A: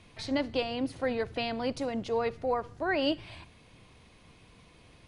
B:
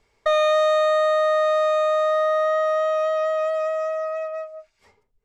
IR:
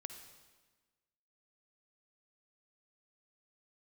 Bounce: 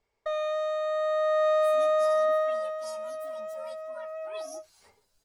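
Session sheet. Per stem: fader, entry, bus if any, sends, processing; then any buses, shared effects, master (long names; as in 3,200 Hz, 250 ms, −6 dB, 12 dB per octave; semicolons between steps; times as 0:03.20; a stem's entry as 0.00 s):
−16.0 dB, 1.45 s, no send, partials spread apart or drawn together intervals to 128%; spectral tilt +3.5 dB per octave
0:00.80 −14.5 dB → 0:01.47 −7 dB → 0:02.34 −7 dB → 0:02.81 −18 dB → 0:03.91 −18 dB → 0:04.65 −5.5 dB, 0.00 s, no send, no processing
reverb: not used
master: parametric band 660 Hz +4 dB 1.3 octaves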